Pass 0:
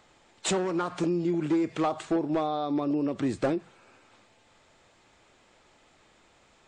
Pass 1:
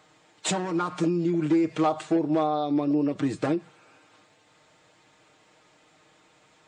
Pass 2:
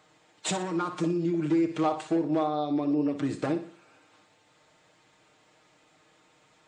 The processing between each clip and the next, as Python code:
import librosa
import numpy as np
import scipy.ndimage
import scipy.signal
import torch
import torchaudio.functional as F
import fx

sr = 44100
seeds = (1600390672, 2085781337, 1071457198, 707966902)

y1 = scipy.signal.sosfilt(scipy.signal.butter(2, 78.0, 'highpass', fs=sr, output='sos'), x)
y1 = y1 + 0.65 * np.pad(y1, (int(6.5 * sr / 1000.0), 0))[:len(y1)]
y2 = fx.echo_feedback(y1, sr, ms=60, feedback_pct=39, wet_db=-11.0)
y2 = y2 * 10.0 ** (-3.0 / 20.0)